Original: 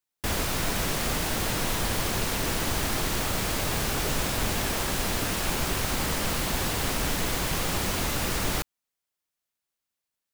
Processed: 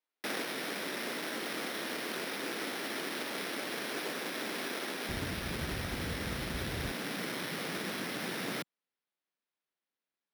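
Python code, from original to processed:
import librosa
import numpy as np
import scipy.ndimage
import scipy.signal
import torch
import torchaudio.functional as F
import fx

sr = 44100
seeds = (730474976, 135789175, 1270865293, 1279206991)

y = fx.lower_of_two(x, sr, delay_ms=0.5)
y = fx.high_shelf(y, sr, hz=6200.0, db=-7.5)
y = np.repeat(y[::6], 6)[:len(y)]
y = fx.highpass(y, sr, hz=fx.steps((0.0, 250.0), (5.09, 47.0), (6.92, 180.0)), slope=24)
y = fx.rider(y, sr, range_db=10, speed_s=0.5)
y = y * librosa.db_to_amplitude(-4.5)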